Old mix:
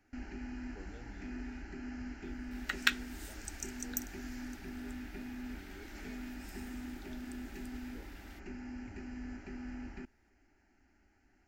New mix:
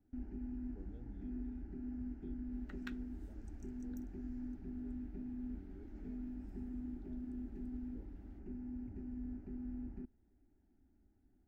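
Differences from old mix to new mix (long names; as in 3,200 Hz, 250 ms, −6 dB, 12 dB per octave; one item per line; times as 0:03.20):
speech: add low-pass with resonance 3,300 Hz, resonance Q 4.2
master: add drawn EQ curve 250 Hz 0 dB, 2,300 Hz −25 dB, 8,200 Hz −29 dB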